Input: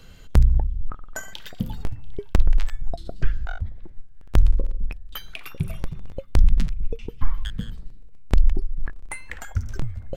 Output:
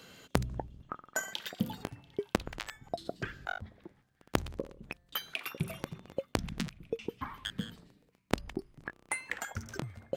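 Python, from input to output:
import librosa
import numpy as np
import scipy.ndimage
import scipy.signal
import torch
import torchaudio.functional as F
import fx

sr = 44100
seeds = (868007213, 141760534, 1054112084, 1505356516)

y = scipy.signal.sosfilt(scipy.signal.butter(2, 220.0, 'highpass', fs=sr, output='sos'), x)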